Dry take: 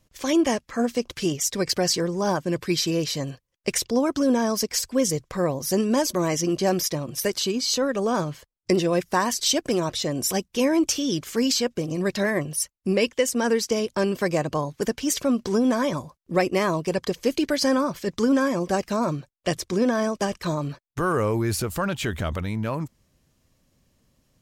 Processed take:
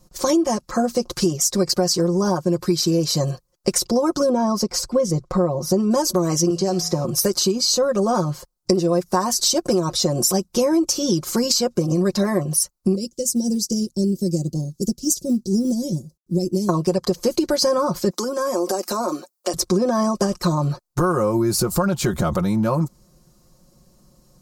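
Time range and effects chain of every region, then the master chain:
4.29–5.91 s: low-pass 2.3 kHz 6 dB/octave + band-stop 1.7 kHz, Q 9.7
6.50–7.05 s: low-pass 7.8 kHz + feedback comb 56 Hz, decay 0.55 s, harmonics odd + three bands compressed up and down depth 100%
12.95–16.69 s: Chebyshev band-stop 270–5700 Hz + companded quantiser 8-bit + upward expansion, over -39 dBFS
18.10–19.54 s: steep high-pass 250 Hz + treble shelf 7 kHz +10.5 dB + compression 12:1, threshold -28 dBFS
whole clip: high-order bell 2.4 kHz -12 dB 1.3 oct; comb 5.6 ms, depth 79%; compression, threshold -25 dBFS; trim +9 dB

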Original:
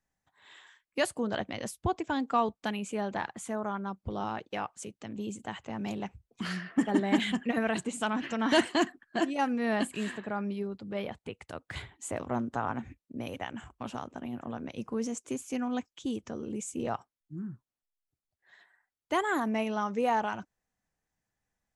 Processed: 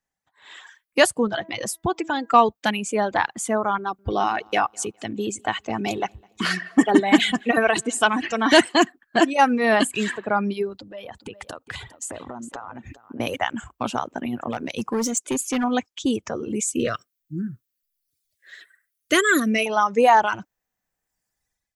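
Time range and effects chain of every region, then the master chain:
1.27–2.34 s: comb 6 ms, depth 41% + de-hum 326.7 Hz, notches 6 + compression 2:1, threshold -35 dBFS
3.78–8.57 s: comb 2.7 ms, depth 31% + feedback delay 206 ms, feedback 35%, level -19 dB
10.73–13.20 s: band-stop 2.2 kHz, Q 7.9 + compression 16:1, threshold -42 dBFS + delay 407 ms -11 dB
14.50–15.64 s: treble shelf 4 kHz +4 dB + hard clipper -30.5 dBFS
16.75–19.66 s: Butterworth band-stop 860 Hz, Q 1.1 + treble shelf 4.4 kHz +7.5 dB
whole clip: reverb removal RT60 1.5 s; bass shelf 260 Hz -7 dB; level rider gain up to 15 dB

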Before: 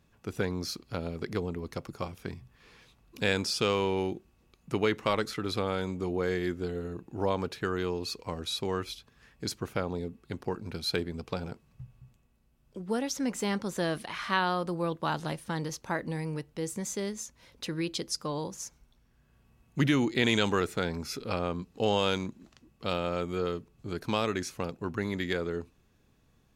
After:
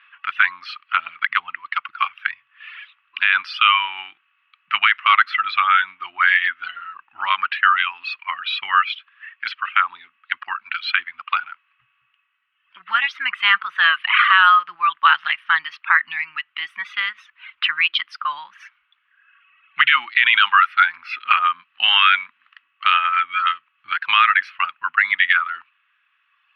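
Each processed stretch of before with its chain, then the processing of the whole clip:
8.92–11.82 s: low-pass 9.1 kHz + peaking EQ 120 Hz -14 dB 0.55 oct
whole clip: reverb removal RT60 1.8 s; elliptic band-pass 1.2–3 kHz, stop band 50 dB; loudness maximiser +27 dB; trim -1 dB

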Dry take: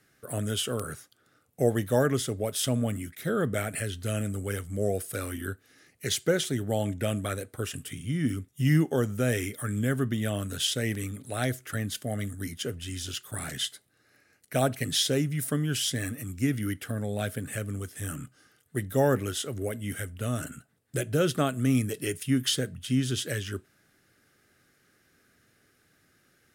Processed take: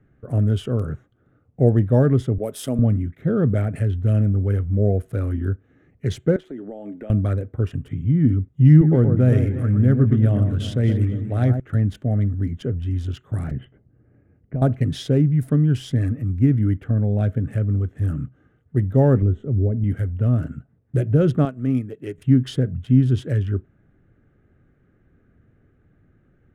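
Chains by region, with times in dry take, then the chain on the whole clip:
2.38–2.79 s: peaking EQ 12 kHz +12.5 dB 1.2 oct + hard clipper -13 dBFS + high-pass 270 Hz
6.36–7.10 s: high-pass 260 Hz 24 dB/octave + compression 4:1, threshold -37 dBFS
8.69–11.60 s: block-companded coder 7-bit + echo whose repeats swap between lows and highs 118 ms, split 1.6 kHz, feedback 64%, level -6.5 dB
13.51–14.62 s: Chebyshev low-pass 3 kHz, order 6 + tilt shelf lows +7 dB, about 660 Hz + compression 3:1, threshold -35 dBFS
19.22–19.84 s: tilt shelf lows +9.5 dB, about 730 Hz + feedback comb 210 Hz, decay 0.82 s, mix 50%
21.45–22.18 s: high-pass 380 Hz 6 dB/octave + upward expansion, over -44 dBFS
whole clip: local Wiener filter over 9 samples; tilt EQ -4.5 dB/octave

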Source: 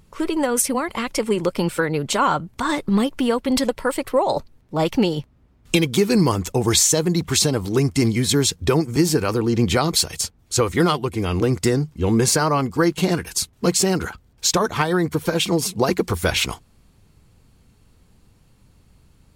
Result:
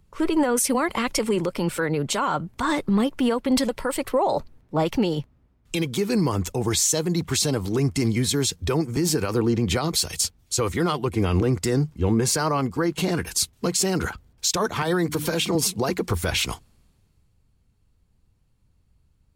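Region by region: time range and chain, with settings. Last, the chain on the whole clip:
14.82–15.55 s: hum notches 50/100/150/200/250/300 Hz + three bands compressed up and down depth 70%
whole clip: gain riding within 5 dB 0.5 s; peak limiter -14 dBFS; three bands expanded up and down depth 40%

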